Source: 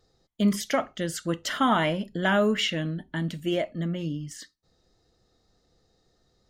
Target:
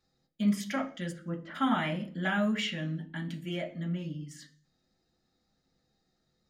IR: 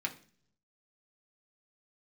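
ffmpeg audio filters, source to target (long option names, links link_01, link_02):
-filter_complex "[0:a]asplit=3[link_01][link_02][link_03];[link_01]afade=type=out:start_time=1.11:duration=0.02[link_04];[link_02]lowpass=1200,afade=type=in:start_time=1.11:duration=0.02,afade=type=out:start_time=1.54:duration=0.02[link_05];[link_03]afade=type=in:start_time=1.54:duration=0.02[link_06];[link_04][link_05][link_06]amix=inputs=3:normalize=0[link_07];[1:a]atrim=start_sample=2205,afade=type=out:start_time=0.45:duration=0.01,atrim=end_sample=20286[link_08];[link_07][link_08]afir=irnorm=-1:irlink=0,volume=-8.5dB"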